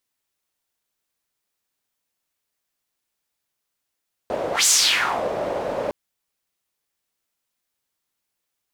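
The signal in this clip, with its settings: whoosh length 1.61 s, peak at 0.36, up 0.14 s, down 0.64 s, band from 570 Hz, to 7100 Hz, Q 3.1, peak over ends 10.5 dB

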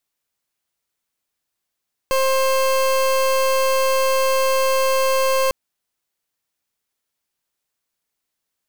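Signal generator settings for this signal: pulse 530 Hz, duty 29% -17.5 dBFS 3.40 s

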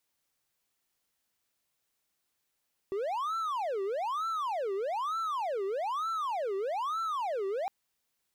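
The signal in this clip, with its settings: siren wail 385–1340 Hz 1.1/s triangle -28 dBFS 4.76 s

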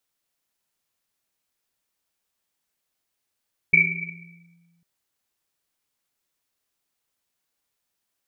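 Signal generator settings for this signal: Risset drum, pitch 170 Hz, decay 1.79 s, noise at 2300 Hz, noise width 120 Hz, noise 75%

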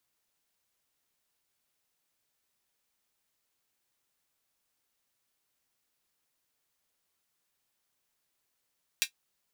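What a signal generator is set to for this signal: closed hi-hat, high-pass 2500 Hz, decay 0.10 s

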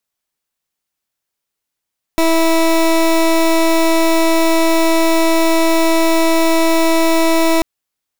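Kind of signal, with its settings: pulse 327 Hz, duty 21% -12 dBFS 5.44 s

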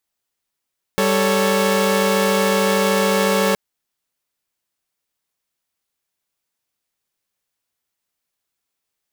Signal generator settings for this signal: chord G3/A4/C#5 saw, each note -17 dBFS 2.57 s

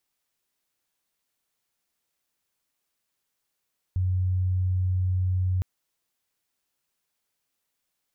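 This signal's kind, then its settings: tone sine 92.1 Hz -21.5 dBFS 1.66 s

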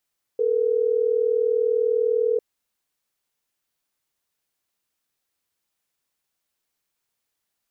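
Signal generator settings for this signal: call progress tone ringback tone, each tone -21 dBFS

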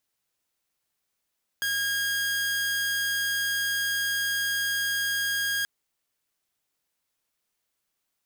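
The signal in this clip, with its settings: tone saw 1630 Hz -22.5 dBFS 4.03 s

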